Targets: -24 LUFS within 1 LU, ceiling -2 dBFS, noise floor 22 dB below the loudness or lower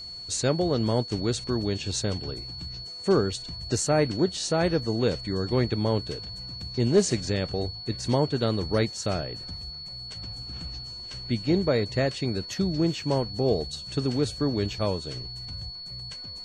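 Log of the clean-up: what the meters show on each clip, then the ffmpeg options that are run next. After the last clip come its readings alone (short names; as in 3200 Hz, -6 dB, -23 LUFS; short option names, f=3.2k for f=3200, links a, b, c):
steady tone 4400 Hz; tone level -37 dBFS; loudness -27.5 LUFS; peak -10.5 dBFS; loudness target -24.0 LUFS
-> -af "bandreject=f=4.4k:w=30"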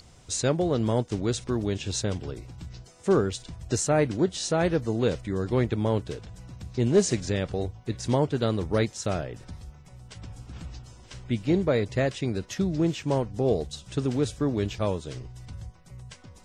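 steady tone none; loudness -27.0 LUFS; peak -10.5 dBFS; loudness target -24.0 LUFS
-> -af "volume=3dB"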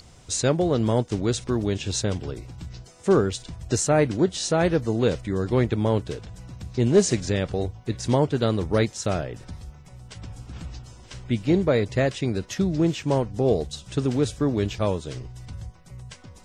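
loudness -24.0 LUFS; peak -7.5 dBFS; noise floor -49 dBFS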